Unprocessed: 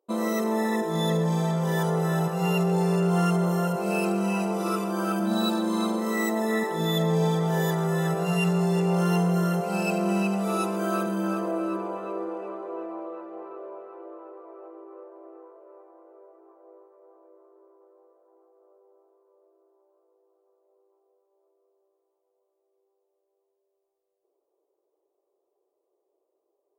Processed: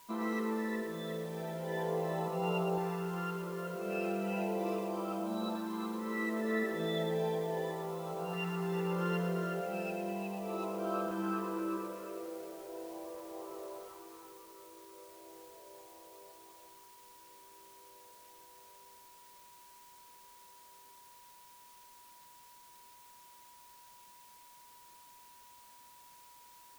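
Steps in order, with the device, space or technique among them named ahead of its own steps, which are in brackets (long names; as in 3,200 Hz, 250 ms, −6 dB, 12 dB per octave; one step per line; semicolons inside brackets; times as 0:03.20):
shortwave radio (band-pass filter 270–2,600 Hz; amplitude tremolo 0.44 Hz, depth 46%; auto-filter notch saw up 0.36 Hz 520–2,000 Hz; steady tone 970 Hz −53 dBFS; white noise bed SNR 21 dB)
feedback echo at a low word length 113 ms, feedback 35%, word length 8 bits, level −7.5 dB
level −4.5 dB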